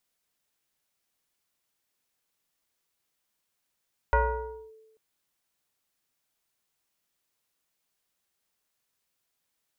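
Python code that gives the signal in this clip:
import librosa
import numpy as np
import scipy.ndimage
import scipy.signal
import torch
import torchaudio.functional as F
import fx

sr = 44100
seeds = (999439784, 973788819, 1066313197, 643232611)

y = fx.fm2(sr, length_s=0.84, level_db=-17, carrier_hz=440.0, ratio=1.14, index=2.0, index_s=0.59, decay_s=1.12, shape='linear')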